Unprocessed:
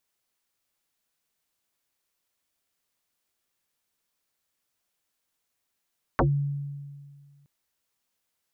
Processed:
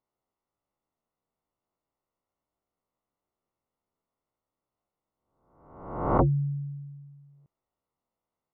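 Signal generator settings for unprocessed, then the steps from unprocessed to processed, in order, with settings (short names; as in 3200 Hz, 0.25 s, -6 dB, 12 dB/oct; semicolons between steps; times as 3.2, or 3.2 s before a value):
FM tone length 1.27 s, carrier 142 Hz, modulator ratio 1.41, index 9, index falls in 0.15 s exponential, decay 1.90 s, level -17 dB
spectral swells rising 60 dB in 0.88 s; polynomial smoothing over 65 samples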